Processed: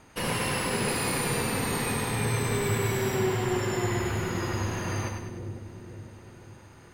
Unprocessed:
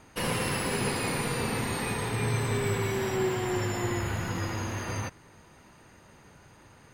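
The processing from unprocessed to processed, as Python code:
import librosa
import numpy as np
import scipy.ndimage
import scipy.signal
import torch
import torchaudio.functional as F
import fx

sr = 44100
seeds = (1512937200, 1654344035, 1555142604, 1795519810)

y = fx.high_shelf(x, sr, hz=10000.0, db=8.0, at=(0.88, 3.19))
y = fx.echo_split(y, sr, split_hz=510.0, low_ms=504, high_ms=100, feedback_pct=52, wet_db=-5)
y = fx.dmg_crackle(y, sr, seeds[0], per_s=15.0, level_db=-52.0)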